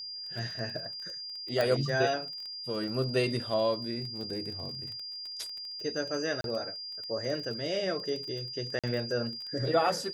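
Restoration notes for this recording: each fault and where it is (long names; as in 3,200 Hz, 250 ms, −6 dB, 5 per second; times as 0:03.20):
surface crackle 23 per second −37 dBFS
whistle 4,800 Hz −38 dBFS
0:01.61: click −15 dBFS
0:06.41–0:06.44: drop-out 32 ms
0:08.79–0:08.84: drop-out 46 ms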